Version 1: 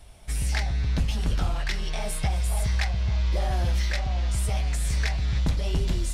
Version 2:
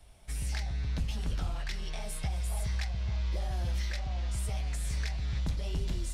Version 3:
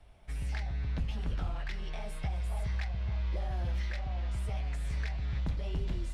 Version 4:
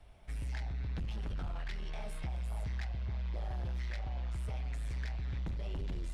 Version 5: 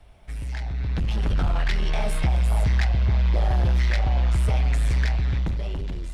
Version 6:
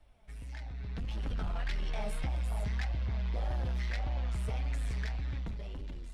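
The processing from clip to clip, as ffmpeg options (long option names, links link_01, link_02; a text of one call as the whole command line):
ffmpeg -i in.wav -filter_complex "[0:a]acrossover=split=210|3000[link_01][link_02][link_03];[link_02]acompressor=threshold=-34dB:ratio=6[link_04];[link_01][link_04][link_03]amix=inputs=3:normalize=0,volume=-7.5dB" out.wav
ffmpeg -i in.wav -af "bass=frequency=250:gain=-1,treble=frequency=4000:gain=-14" out.wav
ffmpeg -i in.wav -af "asoftclip=type=tanh:threshold=-33dB" out.wav
ffmpeg -i in.wav -af "dynaudnorm=framelen=230:gausssize=9:maxgain=10.5dB,volume=6.5dB" out.wav
ffmpeg -i in.wav -af "flanger=delay=3.2:depth=1.8:regen=52:speed=1.7:shape=triangular,volume=-7.5dB" out.wav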